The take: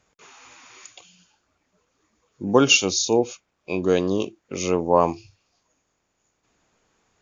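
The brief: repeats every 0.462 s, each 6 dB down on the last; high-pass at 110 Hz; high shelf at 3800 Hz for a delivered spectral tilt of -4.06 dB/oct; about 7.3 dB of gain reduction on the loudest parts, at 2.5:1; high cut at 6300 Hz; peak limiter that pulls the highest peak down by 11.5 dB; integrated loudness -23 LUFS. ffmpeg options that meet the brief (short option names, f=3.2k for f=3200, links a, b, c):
-af "highpass=110,lowpass=6.3k,highshelf=f=3.8k:g=-8.5,acompressor=threshold=-22dB:ratio=2.5,alimiter=limit=-21dB:level=0:latency=1,aecho=1:1:462|924|1386|1848|2310|2772:0.501|0.251|0.125|0.0626|0.0313|0.0157,volume=9dB"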